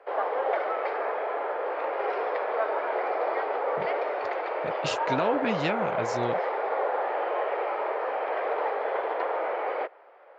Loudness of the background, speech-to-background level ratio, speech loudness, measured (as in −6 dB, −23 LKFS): −29.0 LKFS, −2.0 dB, −31.0 LKFS